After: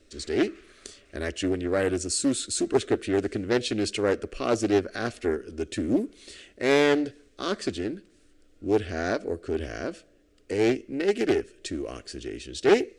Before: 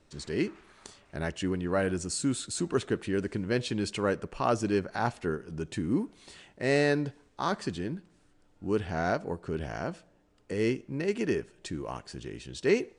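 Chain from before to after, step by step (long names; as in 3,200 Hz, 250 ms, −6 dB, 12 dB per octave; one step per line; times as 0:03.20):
phaser with its sweep stopped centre 370 Hz, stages 4
highs frequency-modulated by the lows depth 0.29 ms
level +6.5 dB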